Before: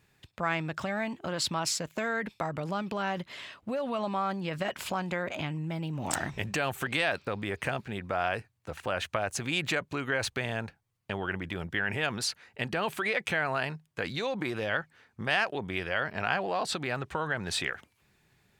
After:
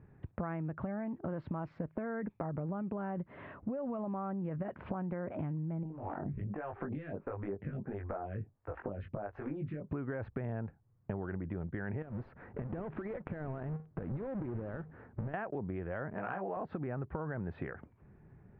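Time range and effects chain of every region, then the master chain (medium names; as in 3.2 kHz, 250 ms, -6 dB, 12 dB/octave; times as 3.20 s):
5.83–9.89 s: compression 3:1, threshold -36 dBFS + doubling 20 ms -3 dB + lamp-driven phase shifter 1.5 Hz
12.02–15.34 s: square wave that keeps the level + compression 16:1, threshold -39 dBFS
16.14–16.57 s: high-pass 390 Hz 6 dB/octave + doubling 16 ms -2.5 dB
whole clip: low-pass 1.8 kHz 24 dB/octave; tilt shelf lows +8.5 dB, about 770 Hz; compression 6:1, threshold -40 dBFS; trim +4 dB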